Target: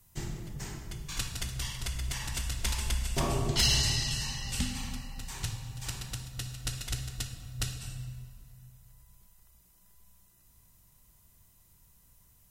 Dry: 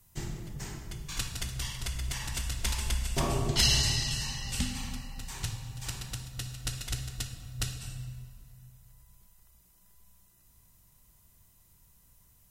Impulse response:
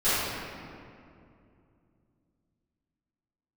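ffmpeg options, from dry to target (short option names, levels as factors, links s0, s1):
-af "asoftclip=type=tanh:threshold=0.178"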